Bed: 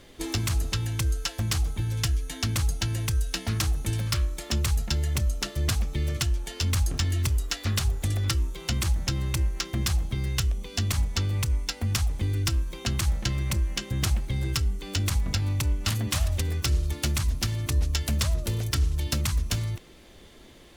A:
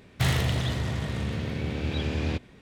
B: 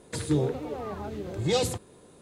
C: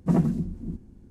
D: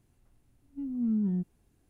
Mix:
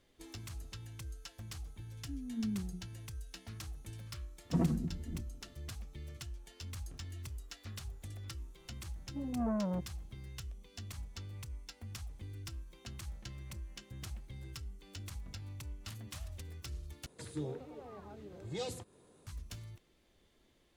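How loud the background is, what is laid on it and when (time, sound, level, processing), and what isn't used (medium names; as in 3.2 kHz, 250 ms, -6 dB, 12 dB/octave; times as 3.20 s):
bed -19.5 dB
1.31 s: add D -8.5 dB + hum notches 60/120/180/240/300/360/420 Hz
4.45 s: add C -7.5 dB + comb of notches 200 Hz
8.38 s: add D -2.5 dB + transformer saturation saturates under 460 Hz
17.06 s: replace with B -14.5 dB + upward compressor 1.5:1, threshold -35 dBFS
not used: A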